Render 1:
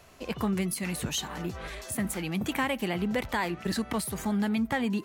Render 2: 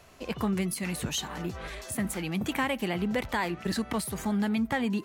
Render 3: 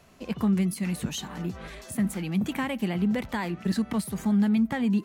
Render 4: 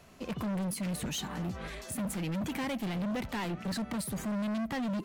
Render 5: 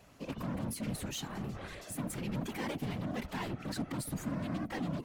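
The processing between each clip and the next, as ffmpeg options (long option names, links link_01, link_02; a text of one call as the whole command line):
ffmpeg -i in.wav -af "highshelf=frequency=12000:gain=-3" out.wav
ffmpeg -i in.wav -af "equalizer=frequency=200:width=1.5:gain=9,volume=-3dB" out.wav
ffmpeg -i in.wav -af "volume=31.5dB,asoftclip=hard,volume=-31.5dB" out.wav
ffmpeg -i in.wav -af "afftfilt=real='hypot(re,im)*cos(2*PI*random(0))':imag='hypot(re,im)*sin(2*PI*random(1))':win_size=512:overlap=0.75,volume=2.5dB" out.wav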